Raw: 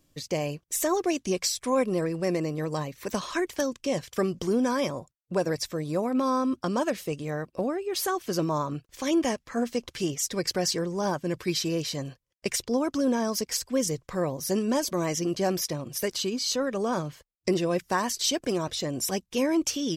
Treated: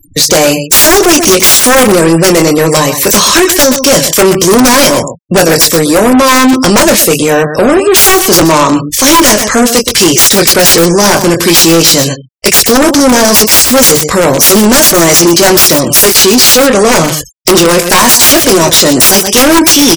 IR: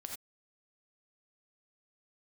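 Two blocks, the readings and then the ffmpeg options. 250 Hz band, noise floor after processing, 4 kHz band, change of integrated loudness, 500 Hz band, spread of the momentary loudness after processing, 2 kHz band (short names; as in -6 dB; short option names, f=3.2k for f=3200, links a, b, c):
+20.5 dB, -20 dBFS, +26.0 dB, +24.0 dB, +21.0 dB, 5 LU, +27.0 dB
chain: -filter_complex "[0:a]equalizer=f=65:t=o:w=1.3:g=4,bandreject=f=50:t=h:w=6,bandreject=f=100:t=h:w=6,bandreject=f=150:t=h:w=6,acrossover=split=180[a][b];[a]acompressor=threshold=-48dB:ratio=5[c];[c][b]amix=inputs=2:normalize=0,equalizer=f=11k:t=o:w=2.1:g=14,asplit=2[d][e];[e]adelay=24,volume=-8dB[f];[d][f]amix=inputs=2:normalize=0,acontrast=52,aeval=exprs='(mod(3.35*val(0)+1,2)-1)/3.35':c=same,asplit=2[g][h];[h]aecho=0:1:123:0.178[i];[g][i]amix=inputs=2:normalize=0,volume=23dB,asoftclip=hard,volume=-23dB,afftfilt=real='re*gte(hypot(re,im),0.00631)':imag='im*gte(hypot(re,im),0.00631)':win_size=1024:overlap=0.75,alimiter=level_in=25dB:limit=-1dB:release=50:level=0:latency=1,volume=-1dB"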